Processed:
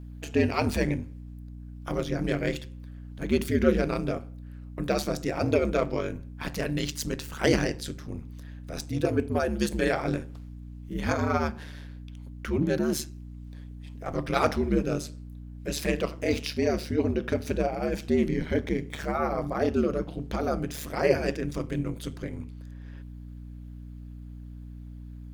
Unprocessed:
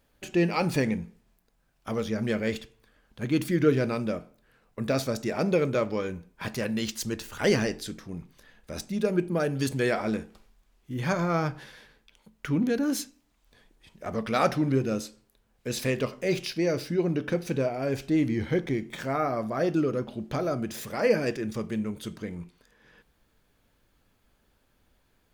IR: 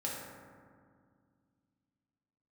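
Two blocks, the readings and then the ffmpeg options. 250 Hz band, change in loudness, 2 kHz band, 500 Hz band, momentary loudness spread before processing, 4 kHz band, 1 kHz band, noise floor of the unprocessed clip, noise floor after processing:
-0.5 dB, 0.0 dB, 0.0 dB, 0.0 dB, 13 LU, 0.0 dB, +0.5 dB, -69 dBFS, -42 dBFS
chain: -af "aeval=exprs='val(0)*sin(2*PI*74*n/s)':c=same,aeval=exprs='val(0)+0.00708*(sin(2*PI*60*n/s)+sin(2*PI*2*60*n/s)/2+sin(2*PI*3*60*n/s)/3+sin(2*PI*4*60*n/s)/4+sin(2*PI*5*60*n/s)/5)':c=same,volume=3dB"

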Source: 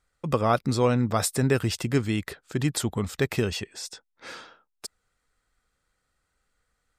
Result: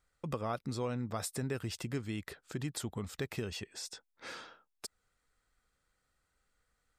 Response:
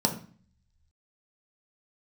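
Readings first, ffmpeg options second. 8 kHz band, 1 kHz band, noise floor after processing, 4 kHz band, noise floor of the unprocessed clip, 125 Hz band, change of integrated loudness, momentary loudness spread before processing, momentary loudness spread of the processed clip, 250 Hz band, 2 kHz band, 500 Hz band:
-11.0 dB, -13.5 dB, -81 dBFS, -10.5 dB, -77 dBFS, -12.5 dB, -14.0 dB, 19 LU, 11 LU, -13.0 dB, -12.0 dB, -13.5 dB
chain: -af "acompressor=threshold=-38dB:ratio=2,volume=-3.5dB"

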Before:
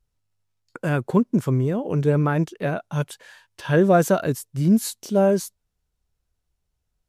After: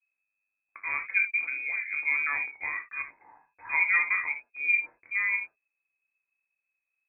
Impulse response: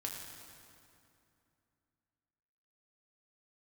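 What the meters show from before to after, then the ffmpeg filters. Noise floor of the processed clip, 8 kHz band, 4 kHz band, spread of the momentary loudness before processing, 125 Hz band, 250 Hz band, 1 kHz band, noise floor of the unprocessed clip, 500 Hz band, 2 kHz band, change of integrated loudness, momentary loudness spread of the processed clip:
-85 dBFS, under -40 dB, under -40 dB, 11 LU, under -40 dB, under -40 dB, -11.0 dB, -77 dBFS, under -35 dB, +8.5 dB, -5.5 dB, 12 LU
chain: -filter_complex "[0:a]lowpass=f=2.2k:t=q:w=0.5098,lowpass=f=2.2k:t=q:w=0.6013,lowpass=f=2.2k:t=q:w=0.9,lowpass=f=2.2k:t=q:w=2.563,afreqshift=-2600[a];[1:a]atrim=start_sample=2205,atrim=end_sample=3528[b];[a][b]afir=irnorm=-1:irlink=0,adynamicequalizer=threshold=0.00631:dfrequency=350:dqfactor=0.87:tfrequency=350:tqfactor=0.87:attack=5:release=100:ratio=0.375:range=3.5:mode=boostabove:tftype=bell,volume=-6.5dB"

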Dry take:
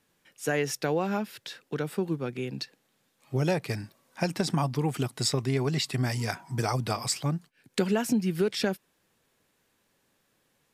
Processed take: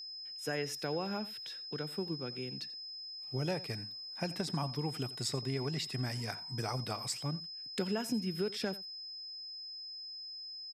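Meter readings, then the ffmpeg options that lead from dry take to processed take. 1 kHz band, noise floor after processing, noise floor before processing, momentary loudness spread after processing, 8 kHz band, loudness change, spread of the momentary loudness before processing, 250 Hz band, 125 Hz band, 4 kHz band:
-9.0 dB, -46 dBFS, -72 dBFS, 7 LU, -9.0 dB, -8.0 dB, 9 LU, -9.0 dB, -9.0 dB, -1.5 dB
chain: -af "aecho=1:1:87:0.126,aeval=exprs='val(0)+0.02*sin(2*PI*5100*n/s)':c=same,volume=-9dB"

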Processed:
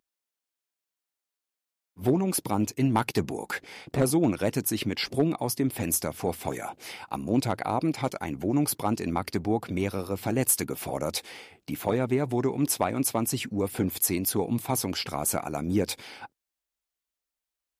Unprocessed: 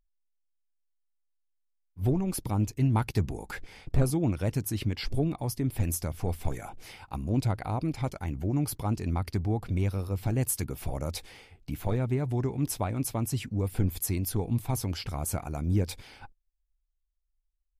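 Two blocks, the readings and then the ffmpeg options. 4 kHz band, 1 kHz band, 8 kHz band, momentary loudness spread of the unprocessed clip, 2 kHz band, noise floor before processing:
+7.0 dB, +6.5 dB, +7.0 dB, 9 LU, +7.0 dB, -77 dBFS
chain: -af "highpass=230,aeval=exprs='clip(val(0),-1,0.1)':c=same,volume=7dB"

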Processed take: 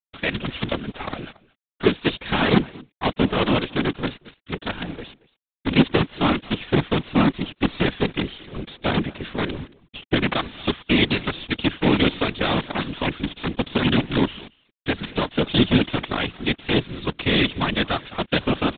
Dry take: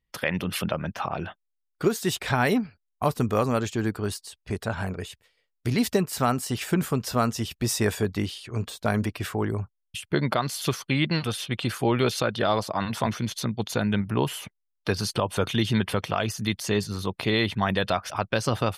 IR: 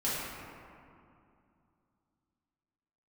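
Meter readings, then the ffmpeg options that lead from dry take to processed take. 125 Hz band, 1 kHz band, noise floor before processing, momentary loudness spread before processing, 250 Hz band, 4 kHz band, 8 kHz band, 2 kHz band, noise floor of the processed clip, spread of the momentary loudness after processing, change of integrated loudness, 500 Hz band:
+1.0 dB, +1.5 dB, -78 dBFS, 8 LU, +5.0 dB, +6.5 dB, under -40 dB, +5.0 dB, -80 dBFS, 12 LU, +3.5 dB, +2.0 dB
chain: -filter_complex "[0:a]aresample=11025,acrusher=bits=4:dc=4:mix=0:aa=0.000001,aresample=44100,aresample=8000,aresample=44100,asplit=2[a][b];[b]aecho=0:1:226:0.075[c];[a][c]amix=inputs=2:normalize=0,crystalizer=i=5:c=0,equalizer=f=250:w=1.2:g=12,afftfilt=real='hypot(re,im)*cos(2*PI*random(0))':imag='hypot(re,im)*sin(2*PI*random(1))':win_size=512:overlap=0.75,volume=3dB"

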